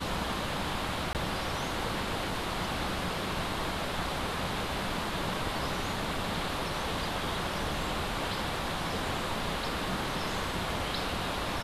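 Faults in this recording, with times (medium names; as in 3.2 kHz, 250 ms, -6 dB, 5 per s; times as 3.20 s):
1.13–1.15 s: dropout 18 ms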